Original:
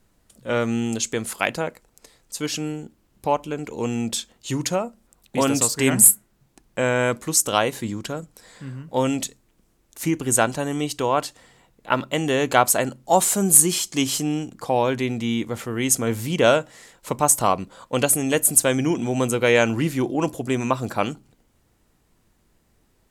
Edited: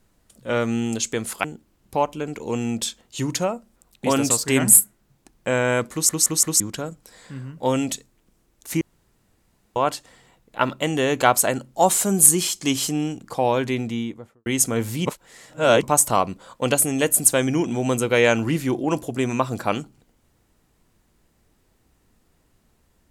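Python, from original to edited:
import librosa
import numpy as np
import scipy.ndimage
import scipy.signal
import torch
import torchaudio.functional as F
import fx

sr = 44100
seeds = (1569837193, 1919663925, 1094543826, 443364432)

y = fx.studio_fade_out(x, sr, start_s=15.06, length_s=0.71)
y = fx.edit(y, sr, fx.cut(start_s=1.44, length_s=1.31),
    fx.stutter_over(start_s=7.23, slice_s=0.17, count=4),
    fx.room_tone_fill(start_s=10.12, length_s=0.95),
    fx.reverse_span(start_s=16.37, length_s=0.77), tone=tone)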